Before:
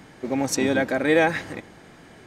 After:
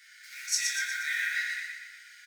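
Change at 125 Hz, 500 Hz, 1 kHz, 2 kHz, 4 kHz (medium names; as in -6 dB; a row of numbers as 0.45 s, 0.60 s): under -40 dB, under -40 dB, -18.5 dB, -3.0 dB, +0.5 dB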